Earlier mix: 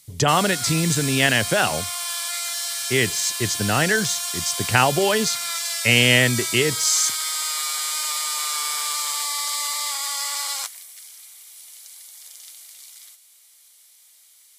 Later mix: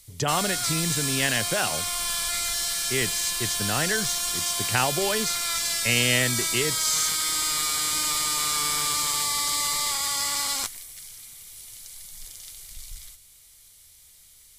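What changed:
speech -7.0 dB; background: remove high-pass 570 Hz 24 dB/octave

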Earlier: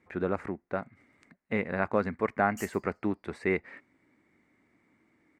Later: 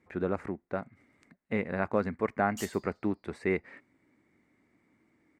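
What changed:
background: remove static phaser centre 1 kHz, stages 6; master: add peaking EQ 1.7 kHz -3 dB 2.7 oct

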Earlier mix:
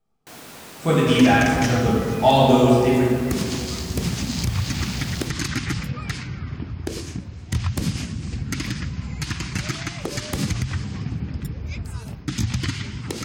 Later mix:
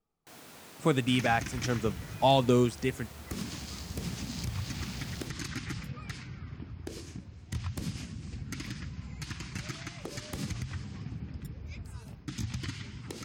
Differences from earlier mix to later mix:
speech: send off; first sound -10.0 dB; second sound -12.0 dB

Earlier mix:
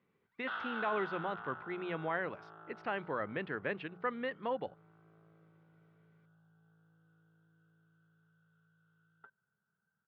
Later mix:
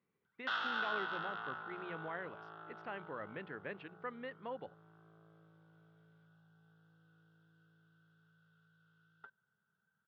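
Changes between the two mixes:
speech -8.0 dB; background: remove distance through air 400 m

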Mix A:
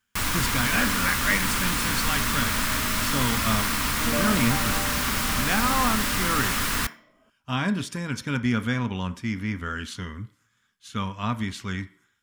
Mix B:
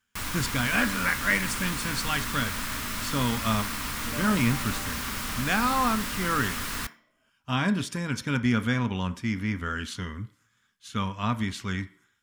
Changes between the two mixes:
first sound -7.0 dB; second sound -11.0 dB

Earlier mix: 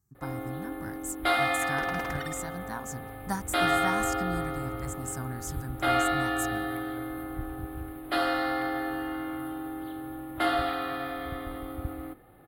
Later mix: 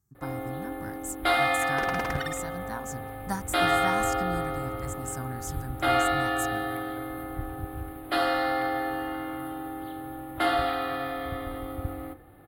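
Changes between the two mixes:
second sound +5.5 dB; reverb: on, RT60 0.80 s

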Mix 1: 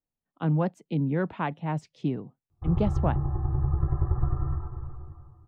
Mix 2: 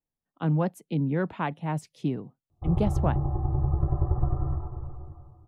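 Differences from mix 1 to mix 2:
speech: remove boxcar filter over 4 samples; background: add fifteen-band graphic EQ 250 Hz +5 dB, 630 Hz +10 dB, 1.6 kHz -10 dB

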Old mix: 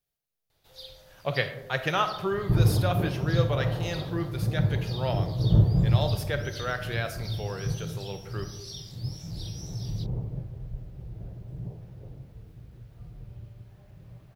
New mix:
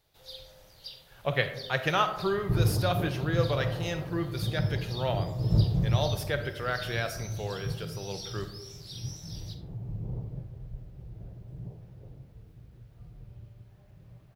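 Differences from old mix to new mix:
first sound: entry -0.50 s; second sound -4.0 dB

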